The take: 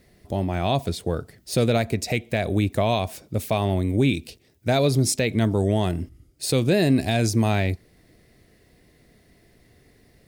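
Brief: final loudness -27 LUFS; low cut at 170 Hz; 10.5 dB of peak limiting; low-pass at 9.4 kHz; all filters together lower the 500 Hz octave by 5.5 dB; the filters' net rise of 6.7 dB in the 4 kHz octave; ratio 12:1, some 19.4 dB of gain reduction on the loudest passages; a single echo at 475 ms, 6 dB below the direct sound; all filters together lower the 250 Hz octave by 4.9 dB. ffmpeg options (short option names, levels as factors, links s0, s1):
-af "highpass=170,lowpass=9400,equalizer=f=250:t=o:g=-3,equalizer=f=500:t=o:g=-6.5,equalizer=f=4000:t=o:g=8,acompressor=threshold=0.0126:ratio=12,alimiter=level_in=2.24:limit=0.0631:level=0:latency=1,volume=0.447,aecho=1:1:475:0.501,volume=6.68"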